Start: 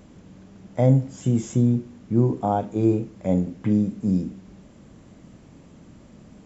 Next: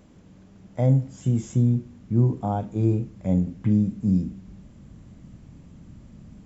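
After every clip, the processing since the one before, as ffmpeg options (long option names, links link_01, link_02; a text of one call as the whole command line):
ffmpeg -i in.wav -af "asubboost=boost=3.5:cutoff=210,volume=-4.5dB" out.wav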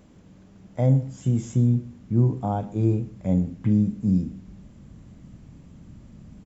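ffmpeg -i in.wav -af "aecho=1:1:124:0.106" out.wav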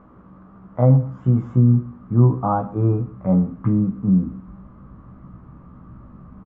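ffmpeg -i in.wav -filter_complex "[0:a]lowpass=frequency=1200:width_type=q:width=6.7,asplit=2[link_01][link_02];[link_02]adelay=16,volume=-5dB[link_03];[link_01][link_03]amix=inputs=2:normalize=0,volume=2dB" out.wav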